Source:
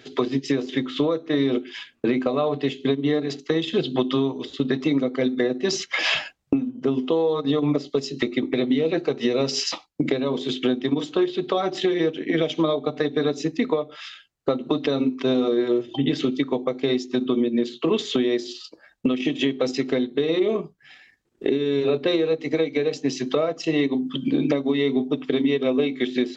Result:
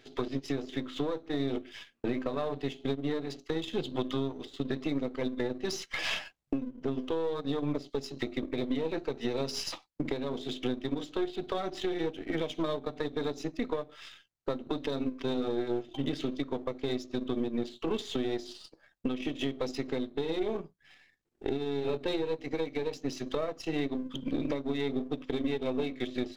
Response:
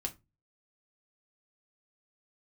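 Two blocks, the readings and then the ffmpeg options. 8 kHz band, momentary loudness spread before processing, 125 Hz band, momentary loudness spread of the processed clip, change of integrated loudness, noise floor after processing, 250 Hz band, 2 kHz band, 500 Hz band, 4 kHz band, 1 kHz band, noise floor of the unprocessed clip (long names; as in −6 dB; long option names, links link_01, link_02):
can't be measured, 4 LU, −8.0 dB, 4 LU, −10.5 dB, −68 dBFS, −11.0 dB, −10.5 dB, −10.5 dB, −10.5 dB, −8.0 dB, −58 dBFS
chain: -af "aeval=exprs='if(lt(val(0),0),0.447*val(0),val(0))':channel_layout=same,volume=-8dB"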